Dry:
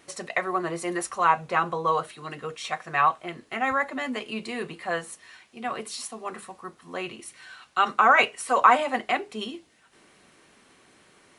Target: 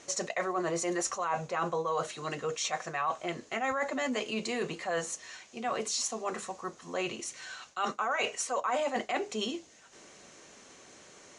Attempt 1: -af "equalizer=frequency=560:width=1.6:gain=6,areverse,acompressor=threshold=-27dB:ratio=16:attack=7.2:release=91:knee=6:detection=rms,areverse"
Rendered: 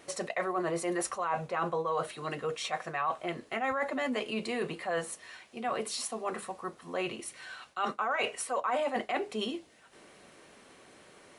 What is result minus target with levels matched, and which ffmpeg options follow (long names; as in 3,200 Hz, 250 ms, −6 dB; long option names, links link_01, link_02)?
8,000 Hz band −5.0 dB
-af "lowpass=frequency=6600:width_type=q:width=5.2,equalizer=frequency=560:width=1.6:gain=6,areverse,acompressor=threshold=-27dB:ratio=16:attack=7.2:release=91:knee=6:detection=rms,areverse"